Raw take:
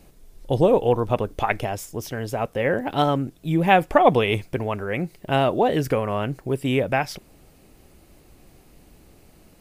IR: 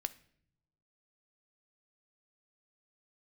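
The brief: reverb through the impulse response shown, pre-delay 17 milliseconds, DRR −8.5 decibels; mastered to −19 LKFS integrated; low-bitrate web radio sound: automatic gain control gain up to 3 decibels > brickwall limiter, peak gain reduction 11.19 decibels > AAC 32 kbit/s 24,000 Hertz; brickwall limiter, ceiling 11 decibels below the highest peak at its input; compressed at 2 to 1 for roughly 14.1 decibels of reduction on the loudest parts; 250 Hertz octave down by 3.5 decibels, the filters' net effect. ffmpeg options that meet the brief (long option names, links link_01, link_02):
-filter_complex "[0:a]equalizer=frequency=250:width_type=o:gain=-5,acompressor=threshold=-38dB:ratio=2,alimiter=level_in=3.5dB:limit=-24dB:level=0:latency=1,volume=-3.5dB,asplit=2[link_01][link_02];[1:a]atrim=start_sample=2205,adelay=17[link_03];[link_02][link_03]afir=irnorm=-1:irlink=0,volume=9dB[link_04];[link_01][link_04]amix=inputs=2:normalize=0,dynaudnorm=maxgain=3dB,alimiter=level_in=3.5dB:limit=-24dB:level=0:latency=1,volume=-3.5dB,volume=18.5dB" -ar 24000 -c:a aac -b:a 32k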